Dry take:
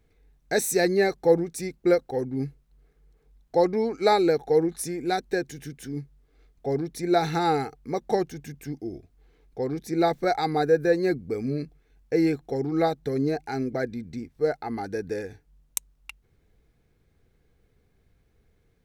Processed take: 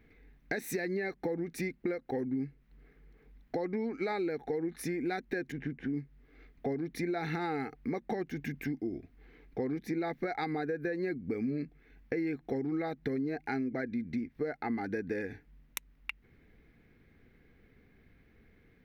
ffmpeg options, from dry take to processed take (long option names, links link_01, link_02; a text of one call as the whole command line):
ffmpeg -i in.wav -filter_complex "[0:a]asettb=1/sr,asplit=3[link_01][link_02][link_03];[link_01]atrim=end=5.524[link_04];[link_02]atrim=start=5.52:end=5.94,asetpts=PTS-STARTPTS,afade=type=in:duration=0.004:curve=qsin,afade=type=out:start_time=0.416:duration=0.004:curve=qsin,adynamicsmooth=sensitivity=4.5:basefreq=1500[link_05];[link_03]atrim=start=5.936[link_06];[link_04][link_05]acrossfade=duration=0.004:curve1=hsin:curve2=qsin[link_07];[link_07][link_06]acrossfade=duration=0.004:curve1=qsin:curve2=hsin,equalizer=frequency=250:width_type=o:width=1:gain=10,equalizer=frequency=2000:width_type=o:width=1:gain=12,equalizer=frequency=8000:width_type=o:width=1:gain=-12,alimiter=limit=-14.5dB:level=0:latency=1:release=184,acompressor=threshold=-33dB:ratio=4" out.wav